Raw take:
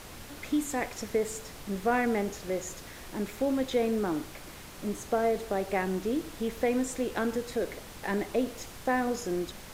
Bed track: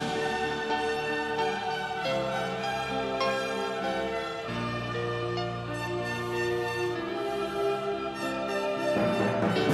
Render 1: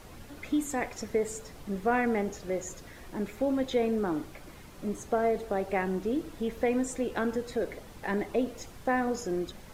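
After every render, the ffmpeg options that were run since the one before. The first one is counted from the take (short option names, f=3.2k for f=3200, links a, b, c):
-af "afftdn=nr=8:nf=-46"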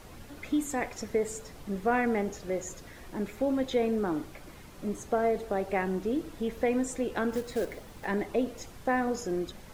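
-filter_complex "[0:a]asettb=1/sr,asplit=3[a][b][c];[a]atrim=end=7.324[d];[b]atrim=start=7.32:end=8.05,asetpts=PTS-STARTPTS,afade=t=in:d=0.004:c=qsin,afade=t=out:st=0.726:d=0.004:c=qsin,acrusher=bits=4:mode=log:mix=0:aa=0.000001[e];[c]atrim=start=8.046[f];[d][e]acrossfade=d=0.004:c1=hsin:c2=qsin[g];[g][f]acrossfade=d=0.004:c1=qsin:c2=hsin"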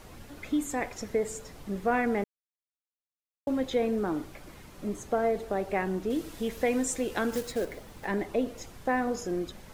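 -filter_complex "[0:a]asettb=1/sr,asplit=3[a][b][c];[a]atrim=end=6.104[d];[b]atrim=start=6.1:end=7.52,asetpts=PTS-STARTPTS,afade=t=in:d=0.004:c=qsin,afade=t=out:st=1.416:d=0.004:c=qsin,highshelf=f=2.6k:g=8[e];[c]atrim=start=7.516[f];[d][e]acrossfade=d=0.004:c1=hsin:c2=qsin[g];[g][f]acrossfade=d=0.004:c1=qsin:c2=hsin,asplit=3[h][i][j];[h]atrim=end=2.24,asetpts=PTS-STARTPTS,afade=t=out:st=2.236:d=0.004:c=hsin[k];[i]atrim=start=2.24:end=3.47,asetpts=PTS-STARTPTS,volume=0[l];[j]atrim=start=3.47,asetpts=PTS-STARTPTS,afade=t=in:d=0.004:c=hsin[m];[k][l][m]concat=n=3:v=0:a=1"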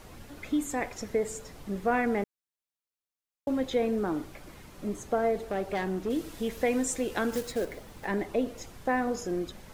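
-filter_complex "[0:a]asettb=1/sr,asplit=3[a][b][c];[a]atrim=end=5.394[d];[b]atrim=start=5.39:end=6.09,asetpts=PTS-STARTPTS,afade=t=in:d=0.004:c=qsin,afade=t=out:st=0.696:d=0.004:c=qsin,asoftclip=type=hard:threshold=-25.5dB[e];[c]atrim=start=6.086[f];[d][e]acrossfade=d=0.004:c1=hsin:c2=qsin[g];[g][f]acrossfade=d=0.004:c1=qsin:c2=hsin"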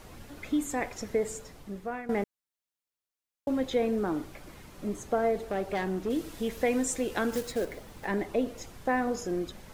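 -filter_complex "[0:a]asplit=2[a][b];[a]atrim=end=2.09,asetpts=PTS-STARTPTS,afade=t=out:st=1.29:d=0.8:silence=0.158489[c];[b]atrim=start=2.09,asetpts=PTS-STARTPTS,afade=t=in:d=0.004:c=hsin:silence=0.158489[d];[c][d]concat=n=2:v=0:a=1"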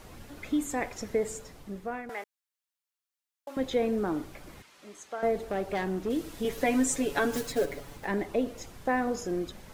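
-filter_complex "[0:a]asettb=1/sr,asplit=3[a][b][c];[a]atrim=end=2.094[d];[b]atrim=start=2.09:end=3.57,asetpts=PTS-STARTPTS,afade=t=in:d=0.004:c=qsin,afade=t=out:st=1.476:d=0.004:c=qsin,highpass=890[e];[c]atrim=start=3.566[f];[d][e]acrossfade=d=0.004:c1=hsin:c2=qsin[g];[g][f]acrossfade=d=0.004:c1=qsin:c2=hsin,asettb=1/sr,asplit=3[h][i][j];[h]atrim=end=4.624[k];[i]atrim=start=4.62:end=5.23,asetpts=PTS-STARTPTS,afade=t=in:d=0.004:c=qsin,afade=t=out:st=0.606:d=0.004:c=qsin,bandpass=f=3.3k:t=q:w=0.53[l];[j]atrim=start=5.226[m];[k][l]acrossfade=d=0.004:c1=hsin:c2=qsin[n];[n][m]acrossfade=d=0.004:c1=qsin:c2=hsin,asettb=1/sr,asplit=3[o][p][q];[o]atrim=end=6.444[r];[p]atrim=start=6.44:end=7.97,asetpts=PTS-STARTPTS,afade=t=in:d=0.004:c=qsin,afade=t=out:st=1.526:d=0.004:c=qsin,aecho=1:1:7.1:0.94,atrim=end_sample=67473[s];[q]atrim=start=7.966[t];[r][s]acrossfade=d=0.004:c1=hsin:c2=qsin[u];[u][t]acrossfade=d=0.004:c1=qsin:c2=hsin"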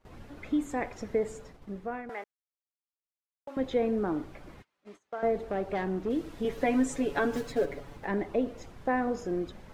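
-af "lowpass=f=2.1k:p=1,agate=range=-21dB:threshold=-49dB:ratio=16:detection=peak"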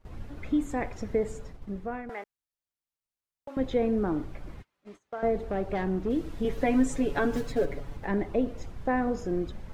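-af "lowshelf=f=130:g=12"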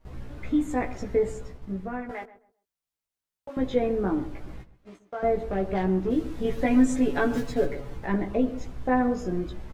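-filter_complex "[0:a]asplit=2[a][b];[b]adelay=16,volume=-2dB[c];[a][c]amix=inputs=2:normalize=0,asplit=2[d][e];[e]adelay=132,lowpass=f=1.2k:p=1,volume=-14dB,asplit=2[f][g];[g]adelay=132,lowpass=f=1.2k:p=1,volume=0.26,asplit=2[h][i];[i]adelay=132,lowpass=f=1.2k:p=1,volume=0.26[j];[d][f][h][j]amix=inputs=4:normalize=0"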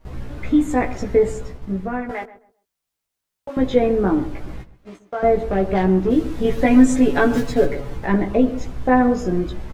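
-af "volume=8dB"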